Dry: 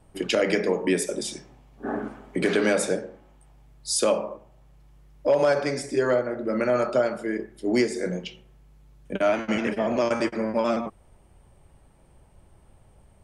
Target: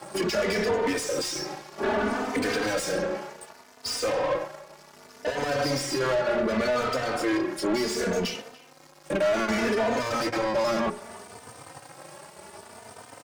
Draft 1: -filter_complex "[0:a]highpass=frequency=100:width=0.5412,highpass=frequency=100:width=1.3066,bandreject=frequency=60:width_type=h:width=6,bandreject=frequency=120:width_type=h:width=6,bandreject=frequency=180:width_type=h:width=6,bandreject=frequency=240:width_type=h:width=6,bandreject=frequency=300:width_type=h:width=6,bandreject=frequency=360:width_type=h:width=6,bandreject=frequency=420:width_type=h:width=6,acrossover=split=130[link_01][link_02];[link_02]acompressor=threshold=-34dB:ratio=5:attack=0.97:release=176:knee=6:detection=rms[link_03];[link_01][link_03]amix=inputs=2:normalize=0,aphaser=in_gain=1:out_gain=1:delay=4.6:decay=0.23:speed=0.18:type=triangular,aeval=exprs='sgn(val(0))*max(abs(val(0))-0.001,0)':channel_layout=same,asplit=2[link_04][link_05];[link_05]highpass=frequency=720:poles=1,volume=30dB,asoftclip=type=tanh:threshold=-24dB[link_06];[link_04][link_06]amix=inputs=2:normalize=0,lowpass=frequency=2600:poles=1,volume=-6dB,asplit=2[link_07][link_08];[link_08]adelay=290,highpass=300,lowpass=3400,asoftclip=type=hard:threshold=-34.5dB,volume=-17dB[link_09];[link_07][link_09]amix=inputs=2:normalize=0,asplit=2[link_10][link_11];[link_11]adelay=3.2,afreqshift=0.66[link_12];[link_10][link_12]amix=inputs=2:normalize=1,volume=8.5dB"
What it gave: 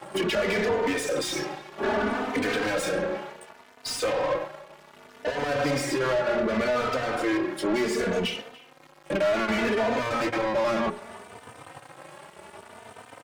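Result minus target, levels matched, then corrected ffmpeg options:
8,000 Hz band −3.0 dB
-filter_complex "[0:a]highpass=frequency=100:width=0.5412,highpass=frequency=100:width=1.3066,highshelf=frequency=4100:width_type=q:width=3:gain=6,bandreject=frequency=60:width_type=h:width=6,bandreject=frequency=120:width_type=h:width=6,bandreject=frequency=180:width_type=h:width=6,bandreject=frequency=240:width_type=h:width=6,bandreject=frequency=300:width_type=h:width=6,bandreject=frequency=360:width_type=h:width=6,bandreject=frequency=420:width_type=h:width=6,acrossover=split=130[link_01][link_02];[link_02]acompressor=threshold=-34dB:ratio=5:attack=0.97:release=176:knee=6:detection=rms[link_03];[link_01][link_03]amix=inputs=2:normalize=0,aphaser=in_gain=1:out_gain=1:delay=4.6:decay=0.23:speed=0.18:type=triangular,aeval=exprs='sgn(val(0))*max(abs(val(0))-0.001,0)':channel_layout=same,asplit=2[link_04][link_05];[link_05]highpass=frequency=720:poles=1,volume=30dB,asoftclip=type=tanh:threshold=-24dB[link_06];[link_04][link_06]amix=inputs=2:normalize=0,lowpass=frequency=2600:poles=1,volume=-6dB,asplit=2[link_07][link_08];[link_08]adelay=290,highpass=300,lowpass=3400,asoftclip=type=hard:threshold=-34.5dB,volume=-17dB[link_09];[link_07][link_09]amix=inputs=2:normalize=0,asplit=2[link_10][link_11];[link_11]adelay=3.2,afreqshift=0.66[link_12];[link_10][link_12]amix=inputs=2:normalize=1,volume=8.5dB"

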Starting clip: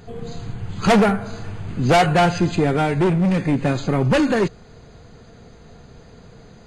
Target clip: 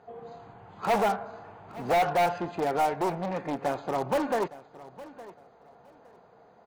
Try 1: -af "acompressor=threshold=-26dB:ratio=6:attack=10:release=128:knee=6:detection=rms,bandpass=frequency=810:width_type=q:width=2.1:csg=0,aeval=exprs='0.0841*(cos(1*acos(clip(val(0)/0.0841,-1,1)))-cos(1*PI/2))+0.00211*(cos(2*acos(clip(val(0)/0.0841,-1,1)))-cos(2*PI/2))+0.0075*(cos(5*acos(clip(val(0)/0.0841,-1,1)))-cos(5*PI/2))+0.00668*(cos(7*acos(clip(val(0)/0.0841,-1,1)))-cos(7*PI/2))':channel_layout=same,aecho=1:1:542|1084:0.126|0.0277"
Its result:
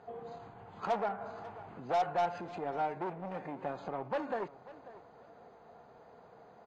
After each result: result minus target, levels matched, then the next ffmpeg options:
downward compressor: peak gain reduction +12.5 dB; echo 321 ms early
-af "bandpass=frequency=810:width_type=q:width=2.1:csg=0,aeval=exprs='0.0841*(cos(1*acos(clip(val(0)/0.0841,-1,1)))-cos(1*PI/2))+0.00211*(cos(2*acos(clip(val(0)/0.0841,-1,1)))-cos(2*PI/2))+0.0075*(cos(5*acos(clip(val(0)/0.0841,-1,1)))-cos(5*PI/2))+0.00668*(cos(7*acos(clip(val(0)/0.0841,-1,1)))-cos(7*PI/2))':channel_layout=same,aecho=1:1:542|1084:0.126|0.0277"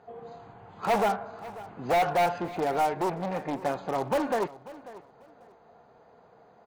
echo 321 ms early
-af "bandpass=frequency=810:width_type=q:width=2.1:csg=0,aeval=exprs='0.0841*(cos(1*acos(clip(val(0)/0.0841,-1,1)))-cos(1*PI/2))+0.00211*(cos(2*acos(clip(val(0)/0.0841,-1,1)))-cos(2*PI/2))+0.0075*(cos(5*acos(clip(val(0)/0.0841,-1,1)))-cos(5*PI/2))+0.00668*(cos(7*acos(clip(val(0)/0.0841,-1,1)))-cos(7*PI/2))':channel_layout=same,aecho=1:1:863|1726:0.126|0.0277"

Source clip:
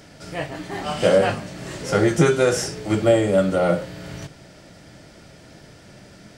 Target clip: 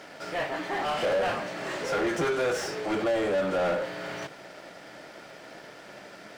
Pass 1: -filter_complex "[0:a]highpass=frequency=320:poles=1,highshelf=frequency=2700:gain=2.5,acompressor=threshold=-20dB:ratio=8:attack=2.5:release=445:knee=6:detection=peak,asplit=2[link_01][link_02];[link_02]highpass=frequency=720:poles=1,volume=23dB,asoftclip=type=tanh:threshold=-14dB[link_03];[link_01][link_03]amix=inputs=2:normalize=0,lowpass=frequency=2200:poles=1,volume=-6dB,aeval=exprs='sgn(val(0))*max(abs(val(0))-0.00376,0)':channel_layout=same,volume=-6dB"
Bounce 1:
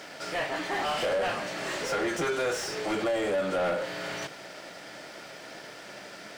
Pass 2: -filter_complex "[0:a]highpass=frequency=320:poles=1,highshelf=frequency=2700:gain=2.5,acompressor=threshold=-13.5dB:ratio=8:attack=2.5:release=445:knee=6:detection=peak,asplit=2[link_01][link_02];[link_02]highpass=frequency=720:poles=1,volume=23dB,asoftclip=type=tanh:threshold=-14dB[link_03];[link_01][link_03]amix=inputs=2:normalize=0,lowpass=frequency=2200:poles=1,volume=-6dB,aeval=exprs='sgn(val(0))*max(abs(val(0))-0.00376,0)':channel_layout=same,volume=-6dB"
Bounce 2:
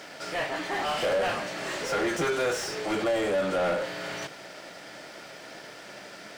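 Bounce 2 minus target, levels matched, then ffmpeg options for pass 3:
4,000 Hz band +3.0 dB
-filter_complex "[0:a]highpass=frequency=320:poles=1,highshelf=frequency=2700:gain=-5.5,acompressor=threshold=-13.5dB:ratio=8:attack=2.5:release=445:knee=6:detection=peak,asplit=2[link_01][link_02];[link_02]highpass=frequency=720:poles=1,volume=23dB,asoftclip=type=tanh:threshold=-14dB[link_03];[link_01][link_03]amix=inputs=2:normalize=0,lowpass=frequency=2200:poles=1,volume=-6dB,aeval=exprs='sgn(val(0))*max(abs(val(0))-0.00376,0)':channel_layout=same,volume=-6dB"

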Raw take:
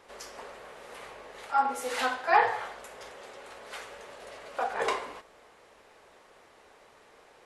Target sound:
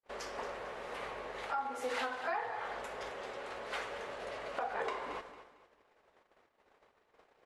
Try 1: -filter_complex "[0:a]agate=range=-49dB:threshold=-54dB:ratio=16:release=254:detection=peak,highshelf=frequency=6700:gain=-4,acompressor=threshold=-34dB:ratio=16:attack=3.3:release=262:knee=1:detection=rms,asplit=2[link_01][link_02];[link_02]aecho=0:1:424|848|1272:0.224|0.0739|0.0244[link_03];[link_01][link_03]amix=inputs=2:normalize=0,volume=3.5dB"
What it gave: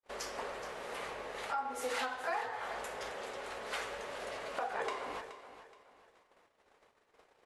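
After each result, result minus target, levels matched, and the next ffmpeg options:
echo 198 ms late; 8,000 Hz band +6.0 dB
-filter_complex "[0:a]agate=range=-49dB:threshold=-54dB:ratio=16:release=254:detection=peak,highshelf=frequency=6700:gain=-4,acompressor=threshold=-34dB:ratio=16:attack=3.3:release=262:knee=1:detection=rms,asplit=2[link_01][link_02];[link_02]aecho=0:1:226|452|678:0.224|0.0739|0.0244[link_03];[link_01][link_03]amix=inputs=2:normalize=0,volume=3.5dB"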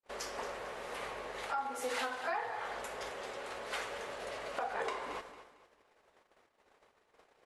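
8,000 Hz band +6.0 dB
-filter_complex "[0:a]agate=range=-49dB:threshold=-54dB:ratio=16:release=254:detection=peak,highshelf=frequency=6700:gain=-16,acompressor=threshold=-34dB:ratio=16:attack=3.3:release=262:knee=1:detection=rms,asplit=2[link_01][link_02];[link_02]aecho=0:1:226|452|678:0.224|0.0739|0.0244[link_03];[link_01][link_03]amix=inputs=2:normalize=0,volume=3.5dB"

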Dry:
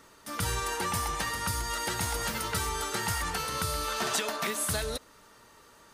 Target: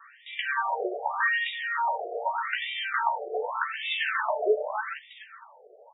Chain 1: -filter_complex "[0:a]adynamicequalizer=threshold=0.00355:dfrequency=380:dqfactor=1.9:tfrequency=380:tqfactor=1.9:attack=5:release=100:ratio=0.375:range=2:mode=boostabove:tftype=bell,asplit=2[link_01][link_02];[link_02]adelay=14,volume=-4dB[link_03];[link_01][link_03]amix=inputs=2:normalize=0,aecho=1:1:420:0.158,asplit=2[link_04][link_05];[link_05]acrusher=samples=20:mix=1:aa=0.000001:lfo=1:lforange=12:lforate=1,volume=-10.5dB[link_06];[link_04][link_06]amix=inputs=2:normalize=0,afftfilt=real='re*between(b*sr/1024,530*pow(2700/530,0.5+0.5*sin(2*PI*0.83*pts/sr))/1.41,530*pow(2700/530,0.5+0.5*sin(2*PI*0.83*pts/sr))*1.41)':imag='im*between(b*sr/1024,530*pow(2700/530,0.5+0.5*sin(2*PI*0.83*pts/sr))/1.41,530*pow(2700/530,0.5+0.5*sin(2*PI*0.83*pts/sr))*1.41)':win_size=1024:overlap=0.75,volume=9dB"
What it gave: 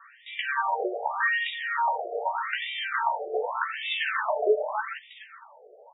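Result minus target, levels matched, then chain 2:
sample-and-hold swept by an LFO: distortion −6 dB
-filter_complex "[0:a]adynamicequalizer=threshold=0.00355:dfrequency=380:dqfactor=1.9:tfrequency=380:tqfactor=1.9:attack=5:release=100:ratio=0.375:range=2:mode=boostabove:tftype=bell,asplit=2[link_01][link_02];[link_02]adelay=14,volume=-4dB[link_03];[link_01][link_03]amix=inputs=2:normalize=0,aecho=1:1:420:0.158,asplit=2[link_04][link_05];[link_05]acrusher=samples=52:mix=1:aa=0.000001:lfo=1:lforange=31.2:lforate=1,volume=-10.5dB[link_06];[link_04][link_06]amix=inputs=2:normalize=0,afftfilt=real='re*between(b*sr/1024,530*pow(2700/530,0.5+0.5*sin(2*PI*0.83*pts/sr))/1.41,530*pow(2700/530,0.5+0.5*sin(2*PI*0.83*pts/sr))*1.41)':imag='im*between(b*sr/1024,530*pow(2700/530,0.5+0.5*sin(2*PI*0.83*pts/sr))/1.41,530*pow(2700/530,0.5+0.5*sin(2*PI*0.83*pts/sr))*1.41)':win_size=1024:overlap=0.75,volume=9dB"

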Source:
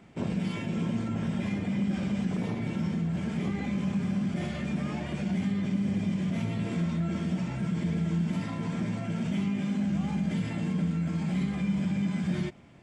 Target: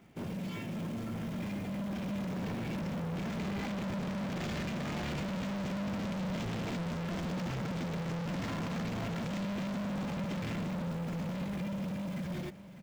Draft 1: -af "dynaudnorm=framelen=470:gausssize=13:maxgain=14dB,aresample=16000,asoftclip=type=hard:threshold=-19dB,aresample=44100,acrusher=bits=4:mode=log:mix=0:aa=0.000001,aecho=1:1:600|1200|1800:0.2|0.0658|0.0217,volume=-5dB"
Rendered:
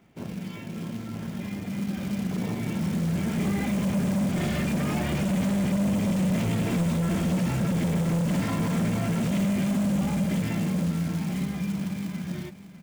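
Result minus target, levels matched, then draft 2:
hard clipping: distortion −5 dB
-af "dynaudnorm=framelen=470:gausssize=13:maxgain=14dB,aresample=16000,asoftclip=type=hard:threshold=-30dB,aresample=44100,acrusher=bits=4:mode=log:mix=0:aa=0.000001,aecho=1:1:600|1200|1800:0.2|0.0658|0.0217,volume=-5dB"

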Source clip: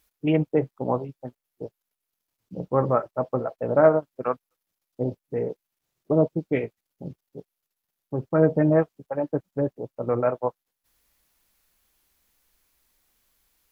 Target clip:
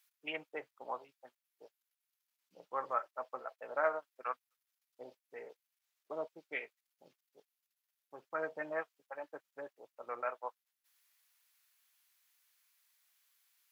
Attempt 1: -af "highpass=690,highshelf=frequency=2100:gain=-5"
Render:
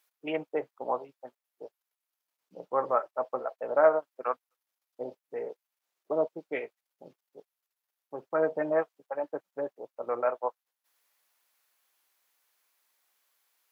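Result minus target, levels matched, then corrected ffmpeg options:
2,000 Hz band −7.5 dB
-af "highpass=1600,highshelf=frequency=2100:gain=-5"

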